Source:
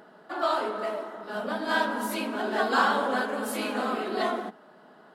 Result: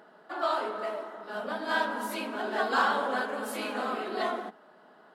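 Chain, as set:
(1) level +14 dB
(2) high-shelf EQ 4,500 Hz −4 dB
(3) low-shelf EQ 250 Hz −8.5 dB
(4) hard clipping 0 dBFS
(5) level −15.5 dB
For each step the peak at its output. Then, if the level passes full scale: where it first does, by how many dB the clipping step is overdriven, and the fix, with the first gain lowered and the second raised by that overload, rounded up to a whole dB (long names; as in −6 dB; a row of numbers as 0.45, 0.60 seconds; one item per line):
+5.0, +5.0, +4.0, 0.0, −15.5 dBFS
step 1, 4.0 dB
step 1 +10 dB, step 5 −11.5 dB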